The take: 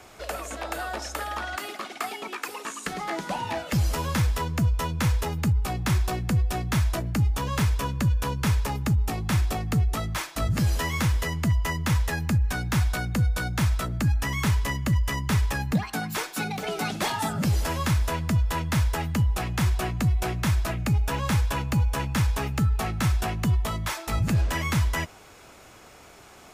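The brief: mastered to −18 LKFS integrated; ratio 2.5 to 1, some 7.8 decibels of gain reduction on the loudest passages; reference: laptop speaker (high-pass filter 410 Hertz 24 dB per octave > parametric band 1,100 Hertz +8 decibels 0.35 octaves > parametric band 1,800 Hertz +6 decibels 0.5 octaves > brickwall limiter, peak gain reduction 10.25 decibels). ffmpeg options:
ffmpeg -i in.wav -af "acompressor=threshold=-31dB:ratio=2.5,highpass=frequency=410:width=0.5412,highpass=frequency=410:width=1.3066,equalizer=frequency=1100:width_type=o:width=0.35:gain=8,equalizer=frequency=1800:width_type=o:width=0.5:gain=6,volume=18.5dB,alimiter=limit=-6.5dB:level=0:latency=1" out.wav

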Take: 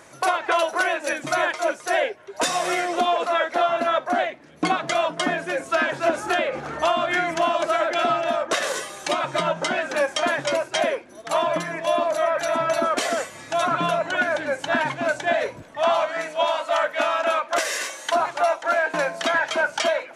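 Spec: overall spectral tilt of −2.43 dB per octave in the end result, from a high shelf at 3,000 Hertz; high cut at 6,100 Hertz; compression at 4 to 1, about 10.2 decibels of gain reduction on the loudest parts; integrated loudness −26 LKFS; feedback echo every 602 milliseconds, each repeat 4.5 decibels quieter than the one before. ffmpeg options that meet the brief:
ffmpeg -i in.wav -af "lowpass=6100,highshelf=frequency=3000:gain=4.5,acompressor=threshold=-29dB:ratio=4,aecho=1:1:602|1204|1806|2408|3010|3612|4214|4816|5418:0.596|0.357|0.214|0.129|0.0772|0.0463|0.0278|0.0167|0.01,volume=3dB" out.wav

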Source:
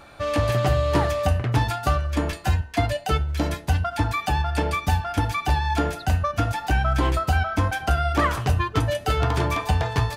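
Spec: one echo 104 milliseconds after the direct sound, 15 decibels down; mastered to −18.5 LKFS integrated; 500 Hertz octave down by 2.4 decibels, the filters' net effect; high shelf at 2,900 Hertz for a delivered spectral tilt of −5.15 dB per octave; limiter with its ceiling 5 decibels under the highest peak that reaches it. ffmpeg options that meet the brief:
ffmpeg -i in.wav -af "equalizer=frequency=500:width_type=o:gain=-3.5,highshelf=frequency=2900:gain=7.5,alimiter=limit=-13.5dB:level=0:latency=1,aecho=1:1:104:0.178,volume=6dB" out.wav

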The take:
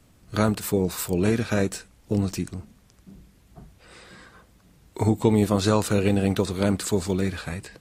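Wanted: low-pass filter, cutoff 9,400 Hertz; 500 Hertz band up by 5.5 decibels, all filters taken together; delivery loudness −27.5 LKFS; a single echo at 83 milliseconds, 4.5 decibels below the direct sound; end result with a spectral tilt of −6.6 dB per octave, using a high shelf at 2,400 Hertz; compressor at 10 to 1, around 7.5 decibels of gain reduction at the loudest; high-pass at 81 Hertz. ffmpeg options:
ffmpeg -i in.wav -af "highpass=81,lowpass=9400,equalizer=frequency=500:width_type=o:gain=7,highshelf=frequency=2400:gain=-8,acompressor=threshold=-19dB:ratio=10,aecho=1:1:83:0.596,volume=-2dB" out.wav

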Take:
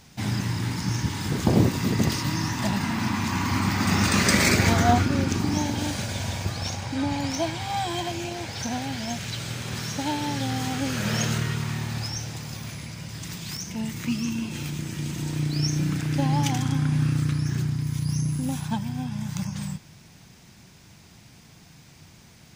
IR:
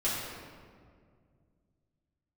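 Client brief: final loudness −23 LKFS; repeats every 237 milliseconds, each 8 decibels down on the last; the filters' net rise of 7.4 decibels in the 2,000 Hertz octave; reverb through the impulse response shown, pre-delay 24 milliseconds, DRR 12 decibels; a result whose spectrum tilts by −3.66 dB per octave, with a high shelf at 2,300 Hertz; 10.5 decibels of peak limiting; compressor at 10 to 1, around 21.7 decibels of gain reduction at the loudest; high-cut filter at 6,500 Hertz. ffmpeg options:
-filter_complex "[0:a]lowpass=6500,equalizer=frequency=2000:width_type=o:gain=5,highshelf=frequency=2300:gain=7.5,acompressor=threshold=-35dB:ratio=10,alimiter=level_in=8.5dB:limit=-24dB:level=0:latency=1,volume=-8.5dB,aecho=1:1:237|474|711|948|1185:0.398|0.159|0.0637|0.0255|0.0102,asplit=2[link_01][link_02];[1:a]atrim=start_sample=2205,adelay=24[link_03];[link_02][link_03]afir=irnorm=-1:irlink=0,volume=-20dB[link_04];[link_01][link_04]amix=inputs=2:normalize=0,volume=17.5dB"

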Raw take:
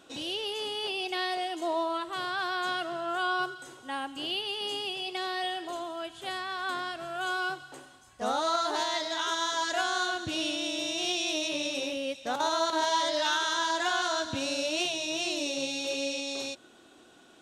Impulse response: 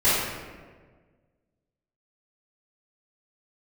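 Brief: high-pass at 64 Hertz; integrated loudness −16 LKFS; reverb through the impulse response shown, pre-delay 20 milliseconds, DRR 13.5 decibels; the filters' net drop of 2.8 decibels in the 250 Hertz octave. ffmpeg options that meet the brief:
-filter_complex "[0:a]highpass=64,equalizer=frequency=250:width_type=o:gain=-4,asplit=2[link_01][link_02];[1:a]atrim=start_sample=2205,adelay=20[link_03];[link_02][link_03]afir=irnorm=-1:irlink=0,volume=-31.5dB[link_04];[link_01][link_04]amix=inputs=2:normalize=0,volume=14.5dB"

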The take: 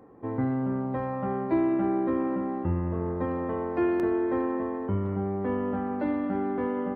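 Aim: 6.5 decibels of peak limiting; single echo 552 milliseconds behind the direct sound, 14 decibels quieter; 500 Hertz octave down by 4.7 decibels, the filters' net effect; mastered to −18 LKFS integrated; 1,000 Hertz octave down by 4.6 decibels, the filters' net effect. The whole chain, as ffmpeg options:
ffmpeg -i in.wav -af "equalizer=frequency=500:width_type=o:gain=-6.5,equalizer=frequency=1000:width_type=o:gain=-3.5,alimiter=limit=-23.5dB:level=0:latency=1,aecho=1:1:552:0.2,volume=14dB" out.wav

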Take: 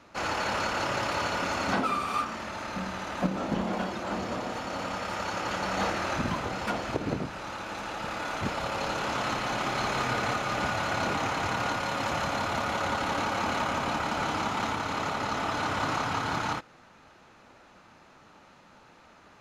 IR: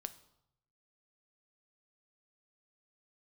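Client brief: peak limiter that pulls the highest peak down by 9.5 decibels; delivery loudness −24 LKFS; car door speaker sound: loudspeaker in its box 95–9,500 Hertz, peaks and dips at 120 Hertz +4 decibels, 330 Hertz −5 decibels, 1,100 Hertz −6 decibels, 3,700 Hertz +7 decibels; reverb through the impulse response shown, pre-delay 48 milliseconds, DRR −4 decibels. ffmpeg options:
-filter_complex "[0:a]alimiter=level_in=0.5dB:limit=-24dB:level=0:latency=1,volume=-0.5dB,asplit=2[link_01][link_02];[1:a]atrim=start_sample=2205,adelay=48[link_03];[link_02][link_03]afir=irnorm=-1:irlink=0,volume=7.5dB[link_04];[link_01][link_04]amix=inputs=2:normalize=0,highpass=95,equalizer=frequency=120:width_type=q:width=4:gain=4,equalizer=frequency=330:width_type=q:width=4:gain=-5,equalizer=frequency=1100:width_type=q:width=4:gain=-6,equalizer=frequency=3700:width_type=q:width=4:gain=7,lowpass=frequency=9500:width=0.5412,lowpass=frequency=9500:width=1.3066,volume=4.5dB"

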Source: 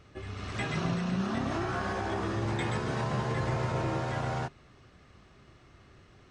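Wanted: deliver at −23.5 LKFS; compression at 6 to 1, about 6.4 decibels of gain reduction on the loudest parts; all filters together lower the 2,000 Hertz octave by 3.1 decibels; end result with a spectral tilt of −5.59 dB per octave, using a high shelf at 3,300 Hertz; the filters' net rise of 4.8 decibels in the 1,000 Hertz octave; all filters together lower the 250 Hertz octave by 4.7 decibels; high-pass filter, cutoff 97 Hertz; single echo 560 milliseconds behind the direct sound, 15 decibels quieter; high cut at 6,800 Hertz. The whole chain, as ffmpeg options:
ffmpeg -i in.wav -af "highpass=97,lowpass=6800,equalizer=frequency=250:width_type=o:gain=-7.5,equalizer=frequency=1000:width_type=o:gain=8.5,equalizer=frequency=2000:width_type=o:gain=-5,highshelf=frequency=3300:gain=-9,acompressor=threshold=-34dB:ratio=6,aecho=1:1:560:0.178,volume=14.5dB" out.wav

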